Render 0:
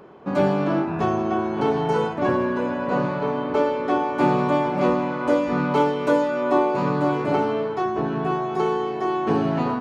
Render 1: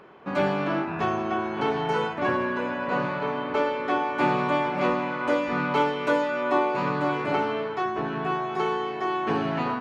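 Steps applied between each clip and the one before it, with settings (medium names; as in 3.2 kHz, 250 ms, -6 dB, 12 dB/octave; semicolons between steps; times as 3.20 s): peaking EQ 2.2 kHz +10 dB 2.3 oct; trim -6.5 dB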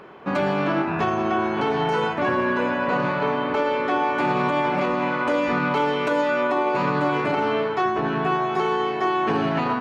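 peak limiter -19.5 dBFS, peak gain reduction 9 dB; trim +6 dB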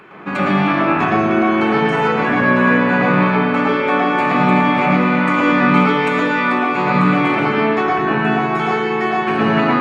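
reverberation RT60 0.70 s, pre-delay 110 ms, DRR -3 dB; trim +3.5 dB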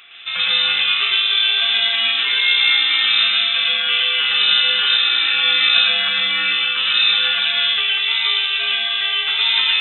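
frequency inversion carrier 3.8 kHz; trim -2 dB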